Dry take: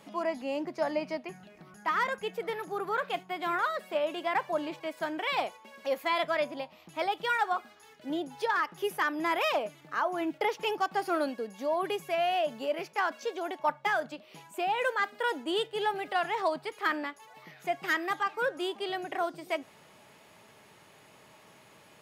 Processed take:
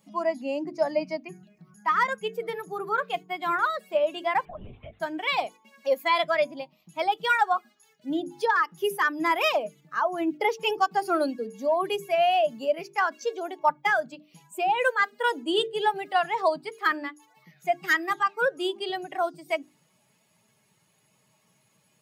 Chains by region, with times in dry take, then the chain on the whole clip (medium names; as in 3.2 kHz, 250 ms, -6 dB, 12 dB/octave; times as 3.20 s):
4.45–5.00 s: compression 3:1, threshold -38 dBFS + LPC vocoder at 8 kHz whisper
whole clip: expander on every frequency bin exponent 1.5; bass shelf 75 Hz -8 dB; hum notches 50/100/150/200/250/300/350/400/450 Hz; trim +8 dB